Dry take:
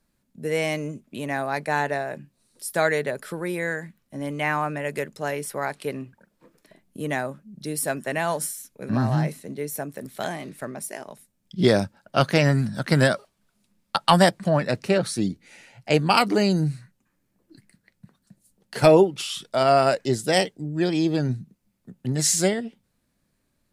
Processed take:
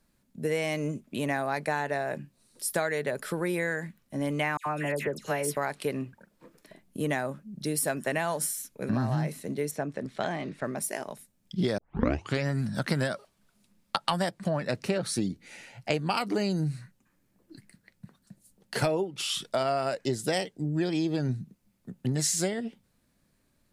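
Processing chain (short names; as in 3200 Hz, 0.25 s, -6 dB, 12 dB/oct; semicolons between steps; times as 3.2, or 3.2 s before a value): compressor 8:1, threshold -26 dBFS, peak gain reduction 15.5 dB; 4.57–5.57 dispersion lows, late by 92 ms, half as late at 1900 Hz; 9.71–10.65 air absorption 120 m; 11.78 tape start 0.68 s; gain +1.5 dB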